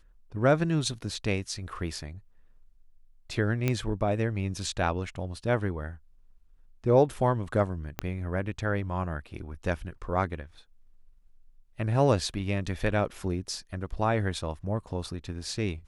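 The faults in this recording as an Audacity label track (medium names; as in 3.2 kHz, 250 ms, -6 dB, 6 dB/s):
3.680000	3.680000	pop -13 dBFS
7.990000	7.990000	pop -14 dBFS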